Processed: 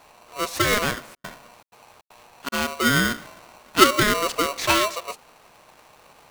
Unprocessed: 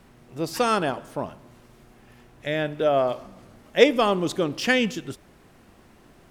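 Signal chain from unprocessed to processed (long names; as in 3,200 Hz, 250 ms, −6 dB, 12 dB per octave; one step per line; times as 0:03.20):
0:01.04–0:02.52: gate pattern "xxx.xxxx." 157 BPM −60 dB
ring modulator with a square carrier 840 Hz
level +1 dB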